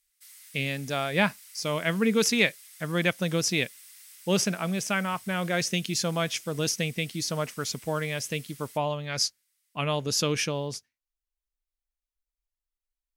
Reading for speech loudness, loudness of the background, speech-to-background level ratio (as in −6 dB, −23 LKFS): −28.0 LKFS, −47.5 LKFS, 19.5 dB